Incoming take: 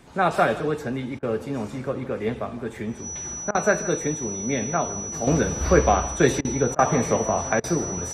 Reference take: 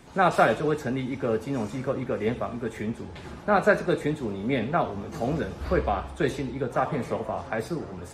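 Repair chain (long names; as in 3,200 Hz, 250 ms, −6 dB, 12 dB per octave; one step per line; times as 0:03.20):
notch filter 5,900 Hz, Q 30
repair the gap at 0:01.19/0:03.51/0:06.41/0:06.75/0:07.60, 37 ms
echo removal 159 ms −17.5 dB
level correction −7 dB, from 0:05.27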